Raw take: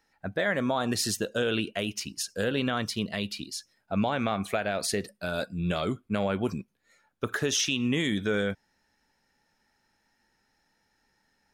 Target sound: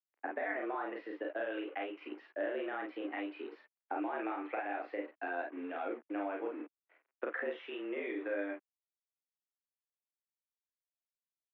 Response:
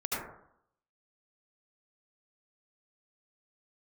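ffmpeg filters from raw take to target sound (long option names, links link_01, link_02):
-filter_complex "[0:a]acompressor=threshold=-41dB:ratio=8,acrusher=bits=8:mix=0:aa=0.5,asplit=2[link_01][link_02];[link_02]aecho=0:1:35|49:0.668|0.631[link_03];[link_01][link_03]amix=inputs=2:normalize=0,highpass=frequency=200:width_type=q:width=0.5412,highpass=frequency=200:width_type=q:width=1.307,lowpass=frequency=2300:width_type=q:width=0.5176,lowpass=frequency=2300:width_type=q:width=0.7071,lowpass=frequency=2300:width_type=q:width=1.932,afreqshift=97,volume=4.5dB"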